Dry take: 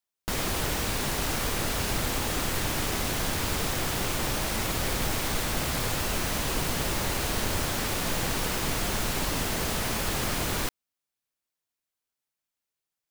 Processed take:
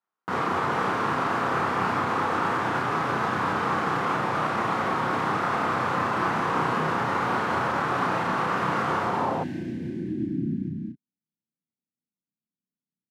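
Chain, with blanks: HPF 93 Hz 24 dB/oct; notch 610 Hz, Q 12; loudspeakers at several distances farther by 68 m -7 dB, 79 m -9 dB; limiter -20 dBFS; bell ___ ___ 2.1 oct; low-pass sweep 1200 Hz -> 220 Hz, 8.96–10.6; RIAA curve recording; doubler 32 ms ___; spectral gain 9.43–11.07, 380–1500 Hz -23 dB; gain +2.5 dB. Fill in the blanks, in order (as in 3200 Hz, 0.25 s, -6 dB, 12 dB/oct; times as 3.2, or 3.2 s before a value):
150 Hz, +8 dB, -3 dB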